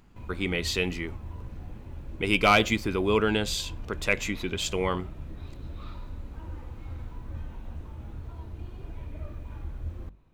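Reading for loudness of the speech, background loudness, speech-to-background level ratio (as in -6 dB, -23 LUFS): -26.5 LUFS, -42.0 LUFS, 15.5 dB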